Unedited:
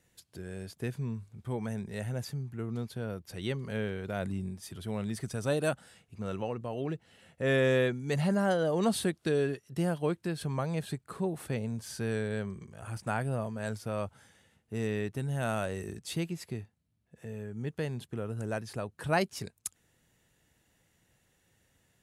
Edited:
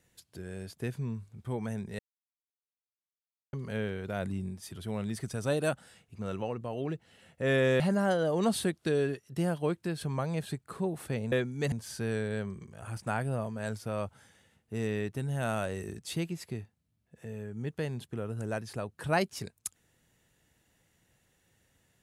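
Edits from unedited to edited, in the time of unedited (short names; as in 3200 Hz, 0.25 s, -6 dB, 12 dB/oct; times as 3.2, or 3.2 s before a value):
1.99–3.53 mute
7.8–8.2 move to 11.72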